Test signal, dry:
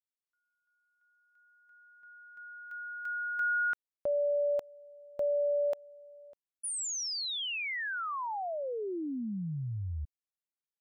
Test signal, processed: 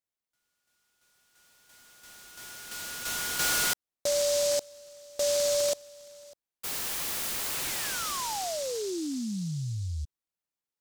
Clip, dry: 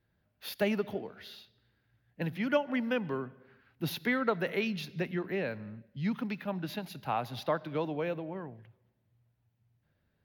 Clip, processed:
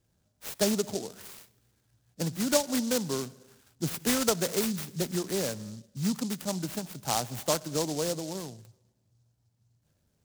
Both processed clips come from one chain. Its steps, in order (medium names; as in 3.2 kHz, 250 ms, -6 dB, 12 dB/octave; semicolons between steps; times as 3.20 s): delay time shaken by noise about 5.6 kHz, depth 0.14 ms; trim +3 dB